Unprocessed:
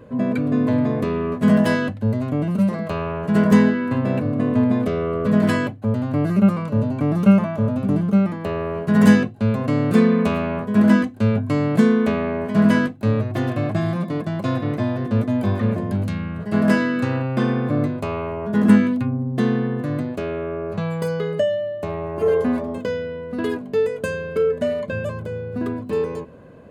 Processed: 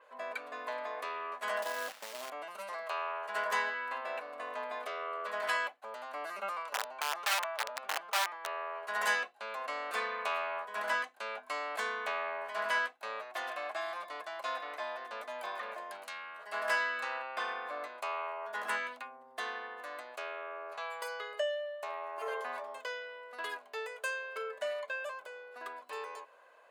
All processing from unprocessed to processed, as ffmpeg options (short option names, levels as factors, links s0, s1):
-filter_complex "[0:a]asettb=1/sr,asplit=3[s0][s1][s2];[s0]atrim=end=1.624[s3];[s1]atrim=start=1.62:end=2.3,asetpts=PTS-STARTPTS,afade=t=in:d=0.004:c=qsin,afade=t=out:st=0.676:d=0.004:c=qsin,tiltshelf=f=830:g=8.5,acompressor=threshold=0.224:ratio=16:attack=3.2:release=140:knee=1:detection=peak,acrusher=bits=5:mode=log:mix=0:aa=0.000001[s4];[s2]atrim=start=2.296[s5];[s3][s4]acrossfade=d=0.004:c1=hsin:c2=qsin[s6];[s6][s5]acrossfade=d=0.004:c1=qsin:c2=hsin,asettb=1/sr,asplit=3[s7][s8][s9];[s7]atrim=end=6.734[s10];[s8]atrim=start=6.73:end=8.83,asetpts=PTS-STARTPTS,afade=t=in:d=0.004:c=qsin,afade=t=out:st=2.096:d=0.004:c=qsin,highpass=f=330:p=1,aemphasis=mode=reproduction:type=50fm,aeval=exprs='(mod(7.5*val(0)+1,2)-1)/7.5':c=same[s11];[s9]atrim=start=8.826[s12];[s10][s11]acrossfade=d=0.004:c1=hsin:c2=qsin[s13];[s13][s12]acrossfade=d=0.004:c1=qsin:c2=hsin,highpass=f=750:w=0.5412,highpass=f=750:w=1.3066,adynamicequalizer=threshold=0.00501:dfrequency=5200:dqfactor=0.7:tfrequency=5200:tqfactor=0.7:attack=5:release=100:ratio=0.375:range=2:mode=cutabove:tftype=highshelf,volume=0.562"